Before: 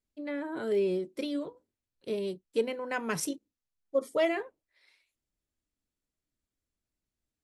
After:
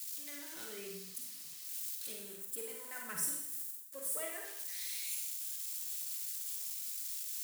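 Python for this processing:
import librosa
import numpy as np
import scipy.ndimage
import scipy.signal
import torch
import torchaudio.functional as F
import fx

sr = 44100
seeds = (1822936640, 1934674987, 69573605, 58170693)

y = x + 0.5 * 10.0 ** (-27.5 / 20.0) * np.diff(np.sign(x), prepend=np.sign(x[:1]))
y = fx.spec_repair(y, sr, seeds[0], start_s=0.9, length_s=0.72, low_hz=270.0, high_hz=5700.0, source='after')
y = fx.band_shelf(y, sr, hz=3800.0, db=-8.5, octaves=1.7, at=(2.13, 4.45))
y = fx.hpss(y, sr, part='harmonic', gain_db=-5)
y = fx.tone_stack(y, sr, knobs='5-5-5')
y = fx.rev_schroeder(y, sr, rt60_s=0.83, comb_ms=38, drr_db=0.5)
y = y * 10.0 ** (1.5 / 20.0)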